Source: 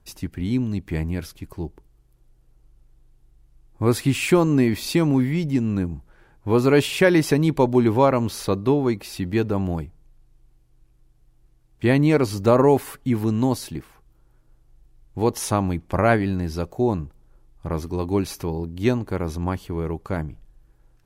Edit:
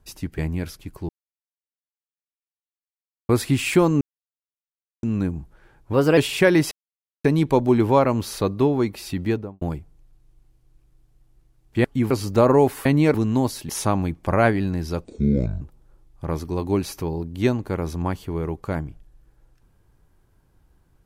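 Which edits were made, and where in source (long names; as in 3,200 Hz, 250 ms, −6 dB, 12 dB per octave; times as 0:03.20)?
0:00.38–0:00.94: remove
0:01.65–0:03.85: silence
0:04.57–0:05.59: silence
0:06.49–0:06.77: play speed 115%
0:07.31: splice in silence 0.53 s
0:09.29–0:09.68: fade out and dull
0:11.91–0:12.20: swap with 0:12.95–0:13.21
0:13.76–0:15.35: remove
0:16.70–0:17.03: play speed 58%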